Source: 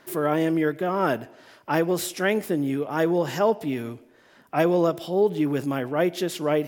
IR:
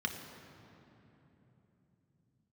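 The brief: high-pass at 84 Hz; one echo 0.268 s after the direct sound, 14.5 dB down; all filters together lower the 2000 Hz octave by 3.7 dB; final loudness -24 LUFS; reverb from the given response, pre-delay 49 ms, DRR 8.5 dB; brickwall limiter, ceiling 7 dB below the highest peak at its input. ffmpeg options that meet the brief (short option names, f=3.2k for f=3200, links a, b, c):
-filter_complex "[0:a]highpass=84,equalizer=f=2k:t=o:g=-5,alimiter=limit=-17dB:level=0:latency=1,aecho=1:1:268:0.188,asplit=2[a][b];[1:a]atrim=start_sample=2205,adelay=49[c];[b][c]afir=irnorm=-1:irlink=0,volume=-12.5dB[d];[a][d]amix=inputs=2:normalize=0,volume=2.5dB"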